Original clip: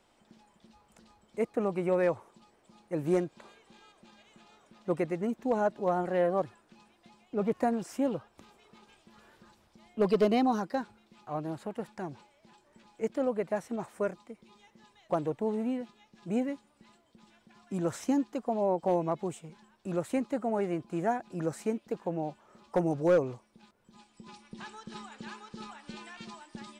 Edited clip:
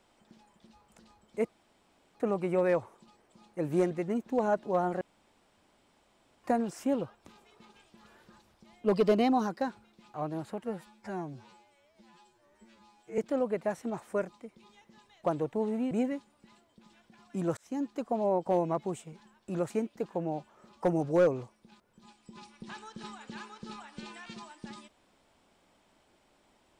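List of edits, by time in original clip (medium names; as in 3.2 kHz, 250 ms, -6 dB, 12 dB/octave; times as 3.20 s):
1.49 s: insert room tone 0.66 s
3.25–5.04 s: delete
6.14–7.57 s: room tone
11.77–13.04 s: stretch 2×
15.77–16.28 s: delete
17.94–18.37 s: fade in
20.07–21.61 s: delete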